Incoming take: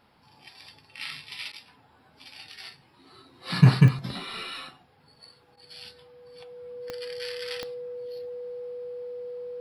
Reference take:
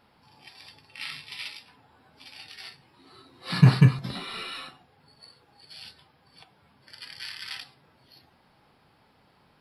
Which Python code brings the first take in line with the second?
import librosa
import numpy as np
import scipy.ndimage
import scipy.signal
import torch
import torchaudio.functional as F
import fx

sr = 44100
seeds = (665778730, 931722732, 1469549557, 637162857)

y = fx.fix_declick_ar(x, sr, threshold=10.0)
y = fx.notch(y, sr, hz=490.0, q=30.0)
y = fx.fix_interpolate(y, sr, at_s=(1.52, 5.56), length_ms=10.0)